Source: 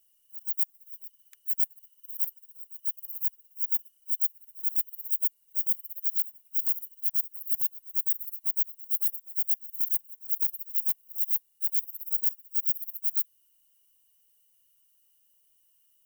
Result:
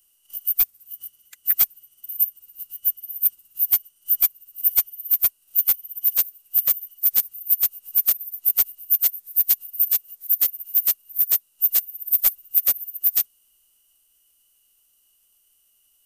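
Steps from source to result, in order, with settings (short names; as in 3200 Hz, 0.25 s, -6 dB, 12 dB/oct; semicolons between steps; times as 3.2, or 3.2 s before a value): formant-preserving pitch shift -6.5 st; transient shaper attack +7 dB, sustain +1 dB; gain +4.5 dB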